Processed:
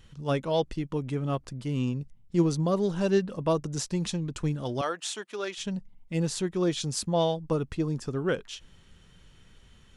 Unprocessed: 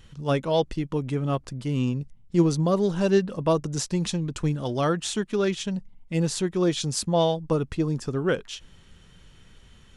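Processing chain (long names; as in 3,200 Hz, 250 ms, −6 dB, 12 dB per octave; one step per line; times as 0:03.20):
0:04.81–0:05.58: high-pass filter 550 Hz 12 dB per octave
level −3.5 dB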